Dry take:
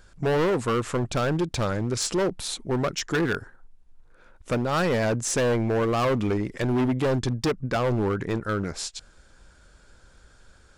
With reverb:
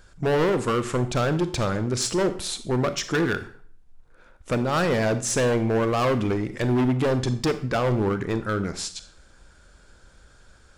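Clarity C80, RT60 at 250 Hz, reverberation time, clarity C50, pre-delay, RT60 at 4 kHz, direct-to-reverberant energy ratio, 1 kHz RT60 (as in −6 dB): 16.5 dB, 0.50 s, 0.50 s, 13.5 dB, 30 ms, 0.45 s, 11.0 dB, 0.45 s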